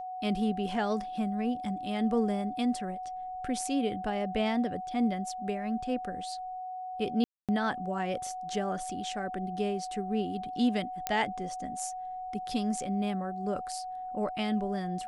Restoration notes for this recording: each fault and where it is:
whine 740 Hz -36 dBFS
7.24–7.49 s: dropout 247 ms
11.07 s: pop -12 dBFS

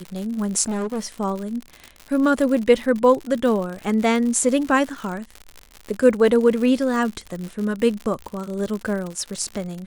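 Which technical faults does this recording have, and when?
crackle 100 per s -27 dBFS
0.68–1.12 s: clipped -22 dBFS

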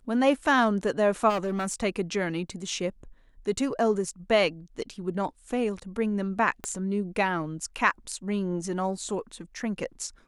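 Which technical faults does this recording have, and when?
1.29–1.83 s: clipped -24.5 dBFS
6.64 s: pop -18 dBFS

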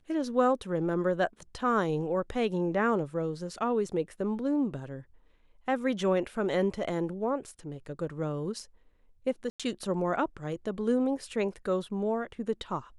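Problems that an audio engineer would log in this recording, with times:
9.50–9.60 s: dropout 96 ms

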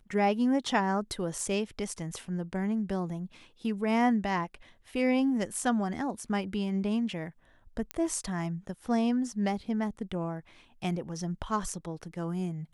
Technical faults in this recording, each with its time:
1.40 s: dropout 2.2 ms
7.91 s: pop -17 dBFS

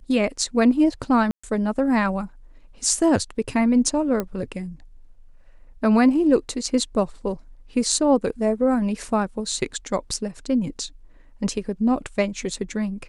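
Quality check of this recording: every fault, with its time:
1.31–1.44 s: dropout 125 ms
4.20 s: pop -12 dBFS

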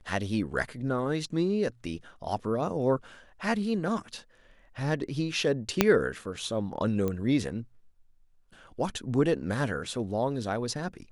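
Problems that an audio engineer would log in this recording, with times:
5.81 s: pop -4 dBFS
7.08 s: pop -18 dBFS

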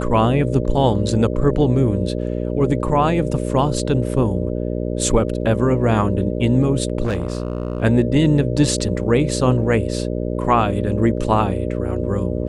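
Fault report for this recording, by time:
buzz 60 Hz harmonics 10 -23 dBFS
7.03–7.83 s: clipped -16.5 dBFS

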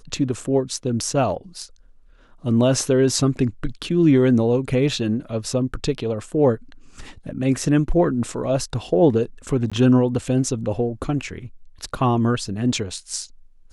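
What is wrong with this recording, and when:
9.70–9.72 s: dropout 16 ms

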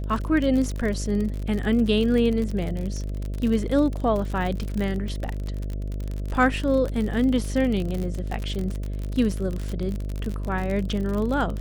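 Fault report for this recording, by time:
buzz 50 Hz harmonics 13 -29 dBFS
crackle 46 per s -27 dBFS

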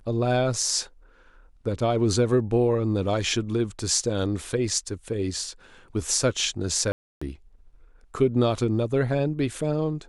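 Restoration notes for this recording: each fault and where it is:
6.92–7.21 s: dropout 295 ms

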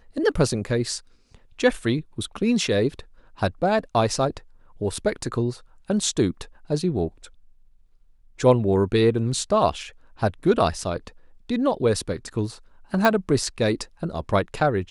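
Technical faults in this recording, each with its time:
13.05 s: pop

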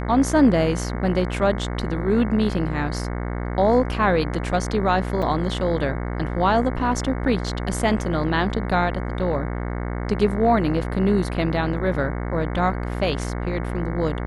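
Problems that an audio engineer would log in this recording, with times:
buzz 60 Hz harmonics 37 -27 dBFS
5.22–5.23 s: dropout 5.5 ms

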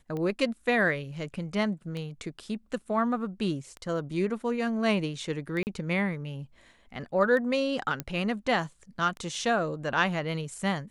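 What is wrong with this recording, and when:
tick 33 1/3 rpm -24 dBFS
5.63–5.67 s: dropout 39 ms
8.00 s: pop -16 dBFS

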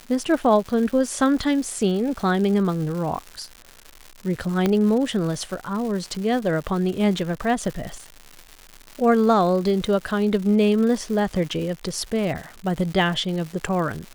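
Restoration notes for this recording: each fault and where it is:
crackle 260 per s -30 dBFS
4.66 s: pop -8 dBFS

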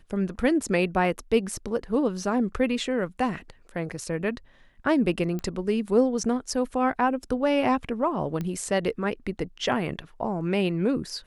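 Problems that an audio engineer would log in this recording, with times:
5.39 s: pop -20 dBFS
8.41 s: pop -19 dBFS

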